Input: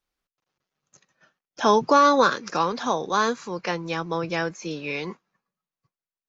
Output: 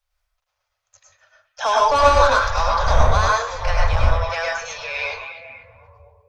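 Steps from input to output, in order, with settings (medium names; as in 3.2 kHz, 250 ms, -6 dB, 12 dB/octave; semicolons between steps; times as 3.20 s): 1.88–4.16 s: wind noise 350 Hz -28 dBFS; elliptic band-stop 100–570 Hz, stop band 40 dB; bass shelf 100 Hz +9.5 dB; saturation -14.5 dBFS, distortion -11 dB; repeats whose band climbs or falls 244 ms, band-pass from 2.8 kHz, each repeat -0.7 oct, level -8.5 dB; reverberation RT60 0.35 s, pre-delay 92 ms, DRR -2.5 dB; trim +2.5 dB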